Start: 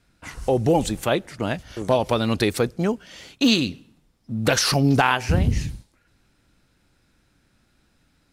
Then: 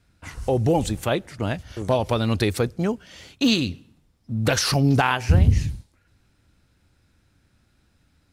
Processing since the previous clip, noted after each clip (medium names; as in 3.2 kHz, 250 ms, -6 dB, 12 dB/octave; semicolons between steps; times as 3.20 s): peaking EQ 85 Hz +9 dB 1 oct; trim -2 dB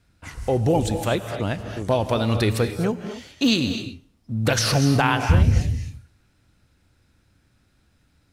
gated-style reverb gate 280 ms rising, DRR 7.5 dB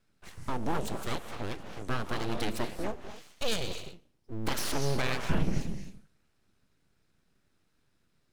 full-wave rectifier; trim -8.5 dB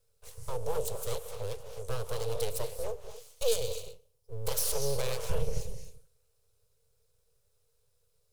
FFT filter 120 Hz 0 dB, 210 Hz -23 dB, 310 Hz -29 dB, 460 Hz +10 dB, 710 Hz -7 dB, 1 kHz -5 dB, 1.8 kHz -13 dB, 2.6 kHz -7 dB, 11 kHz +9 dB